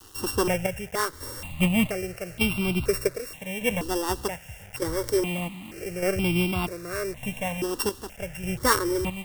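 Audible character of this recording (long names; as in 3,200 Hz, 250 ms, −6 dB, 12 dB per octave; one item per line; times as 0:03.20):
a buzz of ramps at a fixed pitch in blocks of 16 samples
chopped level 0.83 Hz, depth 60%, duty 55%
a quantiser's noise floor 8 bits, dither none
notches that jump at a steady rate 2.1 Hz 610–1,800 Hz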